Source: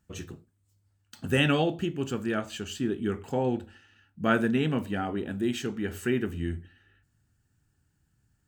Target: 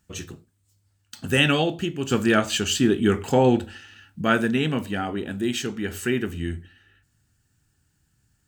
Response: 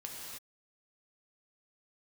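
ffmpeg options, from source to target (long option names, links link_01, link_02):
-filter_complex "[0:a]highshelf=frequency=2600:gain=9.5,asplit=3[link_01][link_02][link_03];[link_01]afade=type=out:start_time=2.1:duration=0.02[link_04];[link_02]acontrast=82,afade=type=in:start_time=2.1:duration=0.02,afade=type=out:start_time=4.21:duration=0.02[link_05];[link_03]afade=type=in:start_time=4.21:duration=0.02[link_06];[link_04][link_05][link_06]amix=inputs=3:normalize=0,highshelf=frequency=8400:gain=-5.5,volume=2.5dB"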